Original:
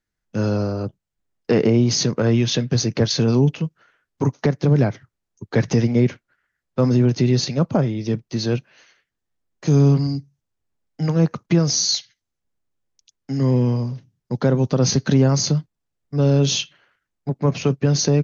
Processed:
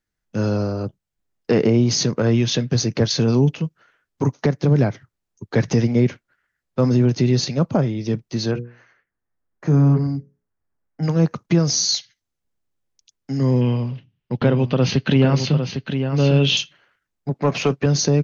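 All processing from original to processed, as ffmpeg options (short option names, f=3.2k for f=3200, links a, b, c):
-filter_complex "[0:a]asettb=1/sr,asplit=3[a][b][c];[a]atrim=end=8.514[d];[b]atrim=start=8.51:end=11.03,asetpts=PTS-STARTPTS,afade=t=in:d=0.004:c=qsin,afade=t=out:st=2.516:d=0.004:c=qsin,highshelf=f=2.4k:t=q:w=1.5:g=-11.5,bandreject=f=60:t=h:w=6,bandreject=f=120:t=h:w=6,bandreject=f=180:t=h:w=6,bandreject=f=240:t=h:w=6,bandreject=f=300:t=h:w=6,bandreject=f=360:t=h:w=6,bandreject=f=420:t=h:w=6,bandreject=f=480:t=h:w=6,bandreject=f=540:t=h:w=6[e];[c]atrim=start=11.026[f];[d][e]acrossfade=d=0.004:c1=hsin:c2=qsin[g];[g][f]acrossfade=d=0.004:c1=qsin:c2=hsin,asettb=1/sr,asplit=3[h][i][j];[h]atrim=end=13.614[k];[i]atrim=start=13.61:end=16.57,asetpts=PTS-STARTPTS,afade=t=in:d=0.004:c=qsin,afade=t=out:st=2.956:d=0.004:c=qsin,lowpass=f=2.9k:t=q:w=4.2,aecho=1:1:804:0.422,atrim=end_sample=130536[l];[j]atrim=start=16.566[m];[k][l]acrossfade=d=0.004:c1=hsin:c2=qsin[n];[n][m]acrossfade=d=0.004:c1=qsin:c2=hsin,asettb=1/sr,asplit=3[o][p][q];[o]atrim=end=17.344[r];[p]atrim=start=17.34:end=17.86,asetpts=PTS-STARTPTS,afade=t=in:d=0.004:c=qsin,afade=t=out:st=0.516:d=0.004:c=qsin,highshelf=f=5.1k:g=-3,asplit=2[s][t];[t]highpass=f=720:p=1,volume=14dB,asoftclip=type=tanh:threshold=-7.5dB[u];[s][u]amix=inputs=2:normalize=0,lowpass=f=3.9k:p=1,volume=-6dB[v];[q]atrim=start=17.856[w];[r][v]acrossfade=d=0.004:c1=hsin:c2=qsin[x];[x][w]acrossfade=d=0.004:c1=qsin:c2=hsin"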